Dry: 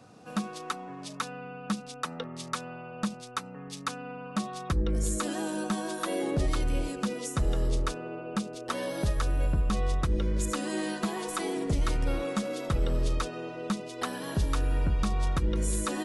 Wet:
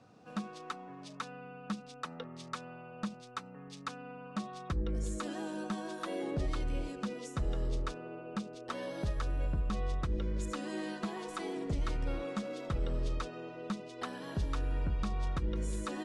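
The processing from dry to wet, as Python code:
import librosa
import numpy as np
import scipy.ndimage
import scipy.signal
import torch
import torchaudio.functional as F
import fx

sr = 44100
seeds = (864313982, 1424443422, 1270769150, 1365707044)

y = fx.air_absorb(x, sr, metres=68.0)
y = F.gain(torch.from_numpy(y), -6.5).numpy()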